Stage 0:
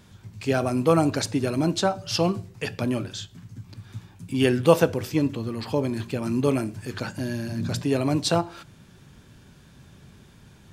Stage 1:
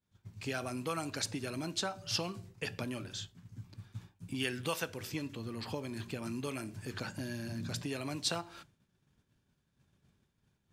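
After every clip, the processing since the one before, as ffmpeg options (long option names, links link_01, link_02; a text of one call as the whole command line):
ffmpeg -i in.wav -filter_complex "[0:a]agate=range=-33dB:threshold=-38dB:ratio=3:detection=peak,acrossover=split=1300[link_01][link_02];[link_01]acompressor=threshold=-30dB:ratio=6[link_03];[link_03][link_02]amix=inputs=2:normalize=0,volume=-6.5dB" out.wav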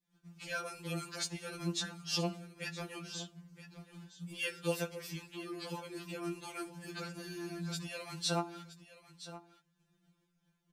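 ffmpeg -i in.wav -af "aecho=1:1:969:0.178,afftfilt=real='re*2.83*eq(mod(b,8),0)':imag='im*2.83*eq(mod(b,8),0)':win_size=2048:overlap=0.75,volume=1dB" out.wav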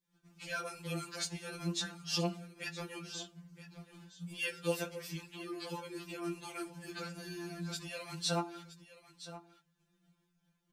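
ffmpeg -i in.wav -af "flanger=delay=2.1:depth=8.4:regen=-54:speed=0.34:shape=sinusoidal,volume=4dB" out.wav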